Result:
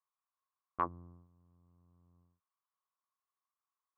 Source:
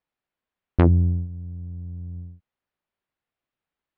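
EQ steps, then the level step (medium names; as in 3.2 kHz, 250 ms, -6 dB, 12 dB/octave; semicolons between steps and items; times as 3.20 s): band-pass filter 1.1 kHz, Q 11; +6.5 dB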